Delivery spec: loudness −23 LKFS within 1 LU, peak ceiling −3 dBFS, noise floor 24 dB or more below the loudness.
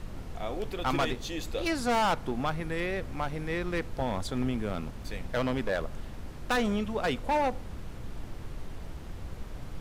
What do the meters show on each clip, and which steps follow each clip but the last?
share of clipped samples 1.9%; peaks flattened at −22.5 dBFS; background noise floor −42 dBFS; target noise floor −56 dBFS; integrated loudness −31.5 LKFS; sample peak −22.5 dBFS; target loudness −23.0 LKFS
→ clipped peaks rebuilt −22.5 dBFS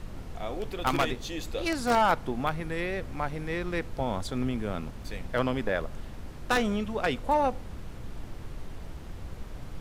share of clipped samples 0.0%; background noise floor −42 dBFS; target noise floor −54 dBFS
→ noise reduction from a noise print 12 dB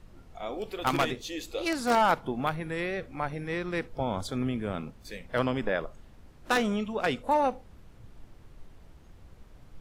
background noise floor −54 dBFS; integrated loudness −30.0 LKFS; sample peak −13.0 dBFS; target loudness −23.0 LKFS
→ level +7 dB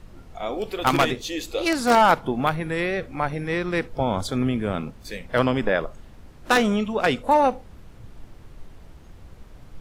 integrated loudness −23.0 LKFS; sample peak −6.0 dBFS; background noise floor −47 dBFS

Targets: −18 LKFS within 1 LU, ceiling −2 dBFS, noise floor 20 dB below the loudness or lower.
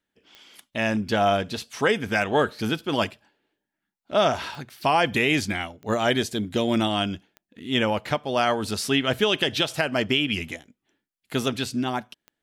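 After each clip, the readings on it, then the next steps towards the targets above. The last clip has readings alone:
number of clicks 6; integrated loudness −24.5 LKFS; sample peak −9.0 dBFS; target loudness −18.0 LKFS
→ click removal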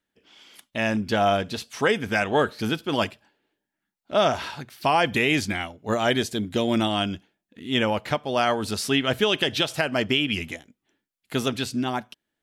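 number of clicks 0; integrated loudness −24.5 LKFS; sample peak −9.0 dBFS; target loudness −18.0 LKFS
→ level +6.5 dB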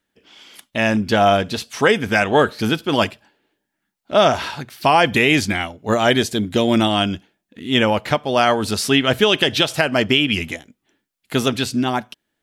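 integrated loudness −18.0 LKFS; sample peak −2.5 dBFS; background noise floor −77 dBFS

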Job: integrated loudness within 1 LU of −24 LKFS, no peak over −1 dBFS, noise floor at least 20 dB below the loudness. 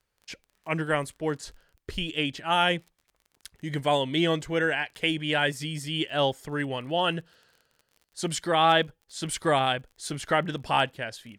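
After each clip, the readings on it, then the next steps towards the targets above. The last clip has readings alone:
crackle rate 32 per second; integrated loudness −27.0 LKFS; sample peak −10.5 dBFS; target loudness −24.0 LKFS
→ click removal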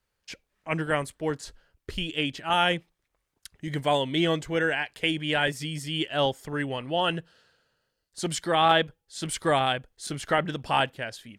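crackle rate 0.26 per second; integrated loudness −27.0 LKFS; sample peak −6.0 dBFS; target loudness −24.0 LKFS
→ level +3 dB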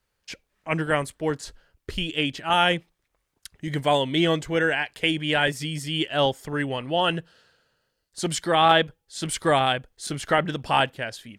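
integrated loudness −24.0 LKFS; sample peak −3.0 dBFS; background noise floor −77 dBFS

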